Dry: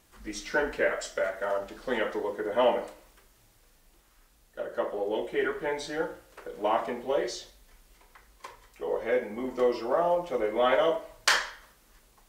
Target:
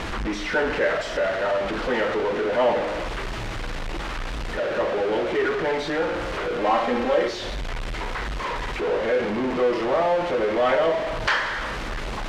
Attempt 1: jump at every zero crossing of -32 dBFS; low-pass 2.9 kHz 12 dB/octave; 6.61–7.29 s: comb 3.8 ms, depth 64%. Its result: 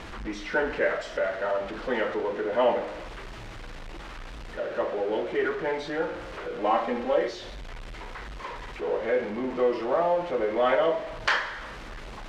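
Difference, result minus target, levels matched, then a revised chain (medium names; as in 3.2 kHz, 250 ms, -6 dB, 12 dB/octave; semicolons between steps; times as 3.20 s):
jump at every zero crossing: distortion -8 dB
jump at every zero crossing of -21 dBFS; low-pass 2.9 kHz 12 dB/octave; 6.61–7.29 s: comb 3.8 ms, depth 64%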